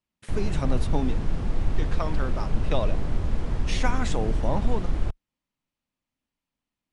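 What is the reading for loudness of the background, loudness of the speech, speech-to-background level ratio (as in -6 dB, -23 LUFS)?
-30.5 LUFS, -32.0 LUFS, -1.5 dB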